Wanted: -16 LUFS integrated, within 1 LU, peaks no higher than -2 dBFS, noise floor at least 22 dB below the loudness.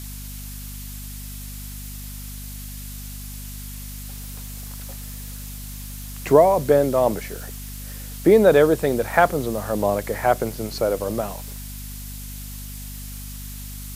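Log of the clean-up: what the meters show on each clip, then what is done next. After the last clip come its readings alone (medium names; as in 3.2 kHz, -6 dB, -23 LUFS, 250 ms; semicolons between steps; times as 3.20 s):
hum 50 Hz; highest harmonic 250 Hz; hum level -33 dBFS; noise floor -35 dBFS; noise floor target -42 dBFS; loudness -19.5 LUFS; peak level -1.0 dBFS; loudness target -16.0 LUFS
-> de-hum 50 Hz, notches 5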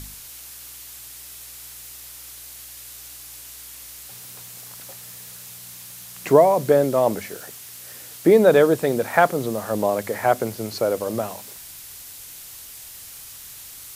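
hum not found; noise floor -41 dBFS; noise floor target -42 dBFS
-> noise print and reduce 6 dB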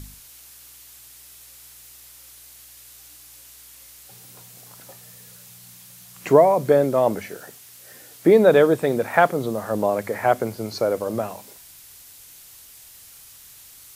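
noise floor -46 dBFS; loudness -19.5 LUFS; peak level -1.0 dBFS; loudness target -16.0 LUFS
-> trim +3.5 dB; peak limiter -2 dBFS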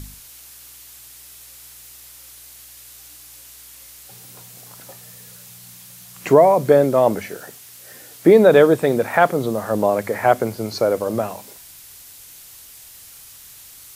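loudness -16.5 LUFS; peak level -2.0 dBFS; noise floor -43 dBFS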